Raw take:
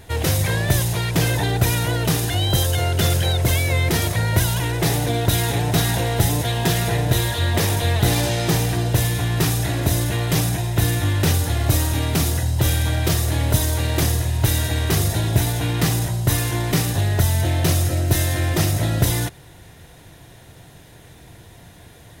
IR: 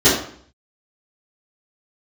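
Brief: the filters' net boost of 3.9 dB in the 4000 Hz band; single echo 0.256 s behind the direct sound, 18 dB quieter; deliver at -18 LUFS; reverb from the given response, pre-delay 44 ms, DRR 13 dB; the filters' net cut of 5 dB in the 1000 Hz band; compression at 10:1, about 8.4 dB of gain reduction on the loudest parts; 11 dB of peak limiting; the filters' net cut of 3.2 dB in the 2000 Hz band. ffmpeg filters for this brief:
-filter_complex "[0:a]equalizer=f=1k:t=o:g=-7,equalizer=f=2k:t=o:g=-3.5,equalizer=f=4k:t=o:g=6,acompressor=threshold=-21dB:ratio=10,alimiter=limit=-20.5dB:level=0:latency=1,aecho=1:1:256:0.126,asplit=2[a][b];[1:a]atrim=start_sample=2205,adelay=44[c];[b][c]afir=irnorm=-1:irlink=0,volume=-37dB[d];[a][d]amix=inputs=2:normalize=0,volume=11dB"

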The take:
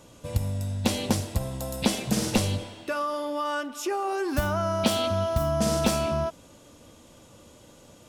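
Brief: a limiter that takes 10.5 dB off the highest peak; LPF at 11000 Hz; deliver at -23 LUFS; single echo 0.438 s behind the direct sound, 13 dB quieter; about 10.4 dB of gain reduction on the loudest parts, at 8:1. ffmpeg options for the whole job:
-af "lowpass=11k,acompressor=threshold=-30dB:ratio=8,alimiter=level_in=4.5dB:limit=-24dB:level=0:latency=1,volume=-4.5dB,aecho=1:1:438:0.224,volume=14dB"

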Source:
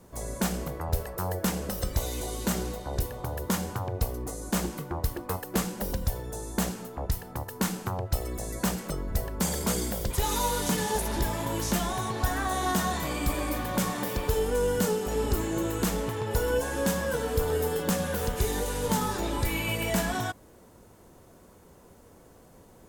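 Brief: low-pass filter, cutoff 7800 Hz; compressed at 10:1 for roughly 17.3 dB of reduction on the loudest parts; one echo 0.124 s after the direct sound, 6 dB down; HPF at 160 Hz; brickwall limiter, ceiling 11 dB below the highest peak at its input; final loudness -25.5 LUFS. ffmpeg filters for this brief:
-af "highpass=160,lowpass=7.8k,acompressor=threshold=-42dB:ratio=10,alimiter=level_in=14dB:limit=-24dB:level=0:latency=1,volume=-14dB,aecho=1:1:124:0.501,volume=21.5dB"

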